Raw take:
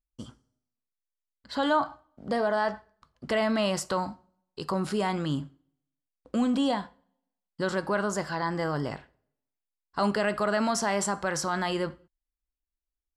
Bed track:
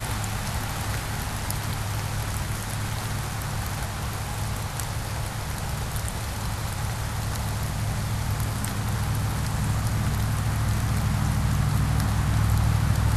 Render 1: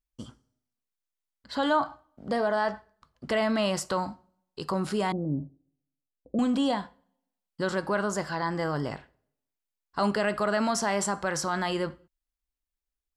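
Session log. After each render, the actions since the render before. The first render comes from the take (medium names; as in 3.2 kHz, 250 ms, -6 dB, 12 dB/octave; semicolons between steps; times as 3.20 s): 5.12–6.39 s: steep low-pass 690 Hz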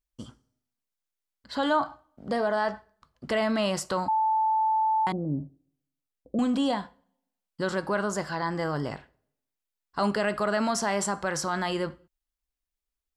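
4.08–5.07 s: bleep 877 Hz -21 dBFS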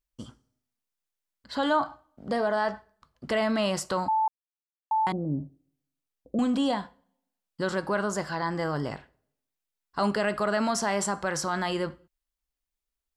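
4.28–4.91 s: mute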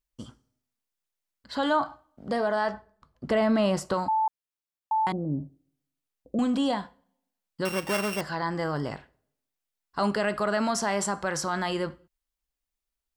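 2.74–3.94 s: tilt shelf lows +4.5 dB, about 1.2 kHz; 7.65–8.21 s: sorted samples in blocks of 16 samples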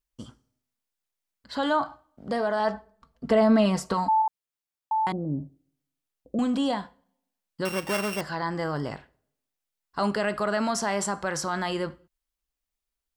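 2.59–4.22 s: comb 4.4 ms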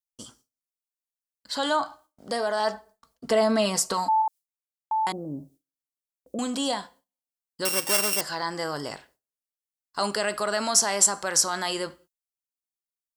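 tone controls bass -10 dB, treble +15 dB; gate with hold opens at -46 dBFS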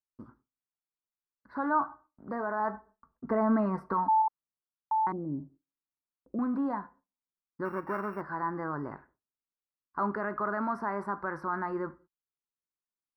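inverse Chebyshev low-pass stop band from 2.9 kHz, stop band 40 dB; high-order bell 590 Hz -9 dB 1 oct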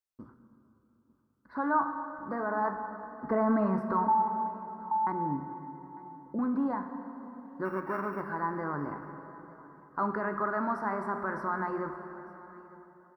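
delay 901 ms -21.5 dB; plate-style reverb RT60 3.7 s, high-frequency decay 0.65×, DRR 6.5 dB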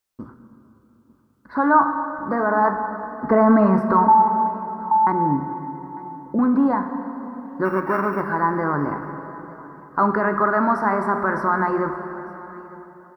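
trim +12 dB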